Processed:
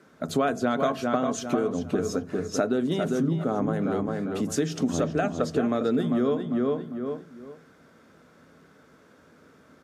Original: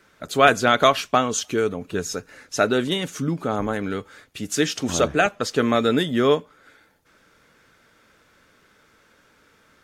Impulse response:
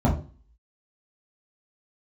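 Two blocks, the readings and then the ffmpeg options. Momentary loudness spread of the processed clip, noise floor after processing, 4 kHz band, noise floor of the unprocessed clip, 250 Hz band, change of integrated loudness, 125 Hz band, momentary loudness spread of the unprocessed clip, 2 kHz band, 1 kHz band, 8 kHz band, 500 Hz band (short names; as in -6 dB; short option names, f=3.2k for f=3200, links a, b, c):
6 LU, -57 dBFS, -13.0 dB, -59 dBFS, 0.0 dB, -5.0 dB, -1.0 dB, 13 LU, -12.5 dB, -8.5 dB, -9.0 dB, -4.5 dB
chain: -filter_complex "[0:a]equalizer=f=2.5k:w=0.69:g=-9,bandreject=f=870:w=19,asplit=2[a][b];[b]adelay=399,lowpass=f=3.1k:p=1,volume=-7dB,asplit=2[c][d];[d]adelay=399,lowpass=f=3.1k:p=1,volume=0.26,asplit=2[e][f];[f]adelay=399,lowpass=f=3.1k:p=1,volume=0.26[g];[a][c][e][g]amix=inputs=4:normalize=0,asplit=2[h][i];[1:a]atrim=start_sample=2205,asetrate=48510,aresample=44100[j];[i][j]afir=irnorm=-1:irlink=0,volume=-30dB[k];[h][k]amix=inputs=2:normalize=0,aresample=32000,aresample=44100,acompressor=threshold=-26dB:ratio=6,highpass=120,aemphasis=mode=reproduction:type=cd,volume=4dB"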